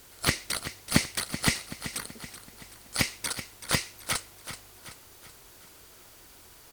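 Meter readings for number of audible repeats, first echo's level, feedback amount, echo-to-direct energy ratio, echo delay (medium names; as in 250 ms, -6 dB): 4, -12.0 dB, 49%, -11.0 dB, 380 ms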